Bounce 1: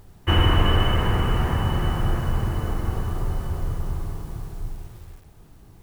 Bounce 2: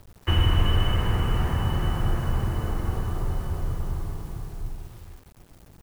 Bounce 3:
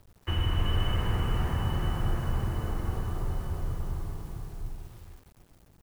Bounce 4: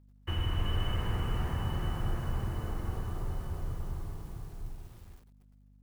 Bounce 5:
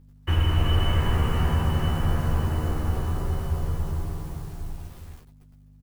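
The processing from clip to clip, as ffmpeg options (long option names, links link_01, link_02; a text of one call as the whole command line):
ffmpeg -i in.wav -filter_complex "[0:a]acrossover=split=170|3000[link_01][link_02][link_03];[link_02]acompressor=threshold=-28dB:ratio=6[link_04];[link_01][link_04][link_03]amix=inputs=3:normalize=0,aeval=exprs='val(0)*gte(abs(val(0)),0.00422)':channel_layout=same,volume=-1.5dB" out.wav
ffmpeg -i in.wav -af "dynaudnorm=framelen=190:gausssize=7:maxgain=4dB,volume=-8dB" out.wav
ffmpeg -i in.wav -af "agate=range=-18dB:threshold=-52dB:ratio=16:detection=peak,aeval=exprs='val(0)+0.002*(sin(2*PI*50*n/s)+sin(2*PI*2*50*n/s)/2+sin(2*PI*3*50*n/s)/3+sin(2*PI*4*50*n/s)/4+sin(2*PI*5*50*n/s)/5)':channel_layout=same,volume=-4dB" out.wav
ffmpeg -i in.wav -filter_complex "[0:a]asplit=2[link_01][link_02];[link_02]adelay=13,volume=-3.5dB[link_03];[link_01][link_03]amix=inputs=2:normalize=0,volume=8dB" out.wav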